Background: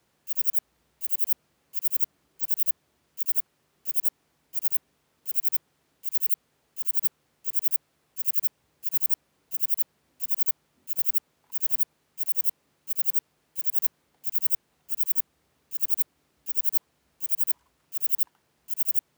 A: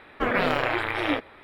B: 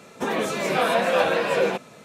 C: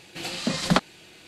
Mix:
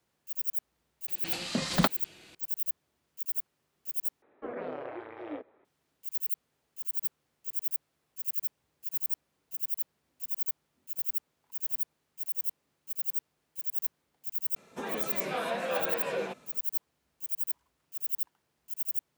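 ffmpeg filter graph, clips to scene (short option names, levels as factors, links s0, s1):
-filter_complex "[0:a]volume=0.422[s0];[1:a]bandpass=f=440:t=q:w=1.2:csg=0[s1];[s0]asplit=2[s2][s3];[s2]atrim=end=4.224[s4];[s1]atrim=end=1.43,asetpts=PTS-STARTPTS,volume=0.316[s5];[s3]atrim=start=5.646[s6];[3:a]atrim=end=1.27,asetpts=PTS-STARTPTS,volume=0.596,afade=t=in:d=0.004:c=hsin,afade=t=out:st=1.266:d=0.004:c=hsin,adelay=1080[s7];[2:a]atrim=end=2.04,asetpts=PTS-STARTPTS,volume=0.266,afade=t=in:d=0.004:c=hsin,afade=t=out:st=2.036:d=0.004:c=hsin,adelay=14560[s8];[s4][s5]acrossfade=d=0.004:c1=hsin:c2=hsin[s9];[s9][s6]acrossfade=d=0.004:c1=hsin:c2=hsin[s10];[s10][s7][s8]amix=inputs=3:normalize=0"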